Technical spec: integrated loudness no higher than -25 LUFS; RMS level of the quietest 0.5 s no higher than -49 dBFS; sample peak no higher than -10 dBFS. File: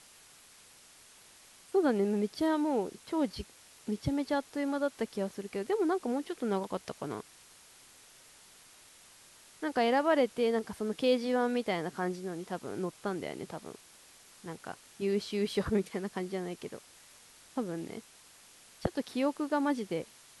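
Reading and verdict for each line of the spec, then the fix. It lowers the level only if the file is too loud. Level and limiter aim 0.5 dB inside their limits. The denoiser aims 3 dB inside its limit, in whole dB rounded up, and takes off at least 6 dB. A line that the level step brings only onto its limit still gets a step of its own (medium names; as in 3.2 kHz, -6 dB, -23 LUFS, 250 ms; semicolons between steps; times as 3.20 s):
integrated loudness -33.0 LUFS: pass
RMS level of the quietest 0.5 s -58 dBFS: pass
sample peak -16.5 dBFS: pass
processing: none needed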